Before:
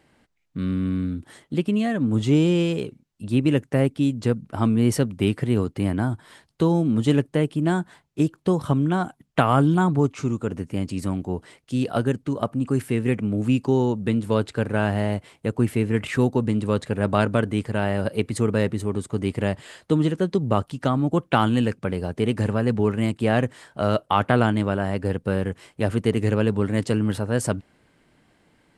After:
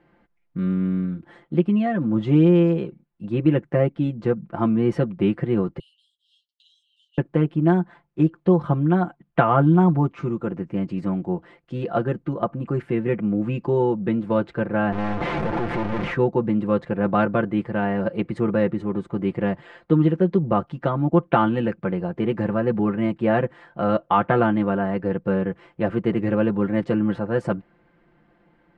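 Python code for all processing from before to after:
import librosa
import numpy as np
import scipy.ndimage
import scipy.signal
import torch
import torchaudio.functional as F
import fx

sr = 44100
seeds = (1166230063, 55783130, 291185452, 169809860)

y = fx.chain(x, sr, fx.cheby1_highpass(hz=2800.0, order=10),
    fx.over_compress(threshold_db=-46.0, ratio=-0.5),
    fx.ensemble(), at=(5.79, 7.18))
y = fx.chain(y, sr, fx.clip_1bit(),
    fx.lowpass(hz=1000.0, slope=6),
    fx.leveller(passes=5), at=(14.92, 16.14))
y = scipy.signal.sosfilt(scipy.signal.butter(2, 1800.0, 'lowpass', fs=sr, output='sos'), y)
y = fx.peak_eq(y, sr, hz=120.0, db=-4.5, octaves=0.51)
y = y + 0.8 * np.pad(y, (int(5.8 * sr / 1000.0), 0))[:len(y)]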